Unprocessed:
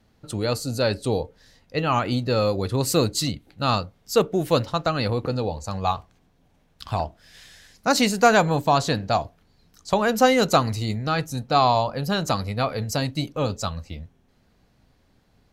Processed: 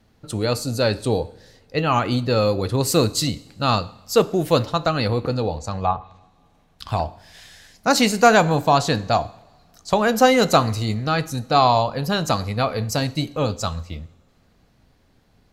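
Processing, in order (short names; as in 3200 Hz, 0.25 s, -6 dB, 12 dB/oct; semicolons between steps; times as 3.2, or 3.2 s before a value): two-slope reverb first 0.69 s, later 2.4 s, from -18 dB, DRR 15.5 dB; 5.56–6.89 treble ducked by the level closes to 1600 Hz, closed at -21 dBFS; gain +2.5 dB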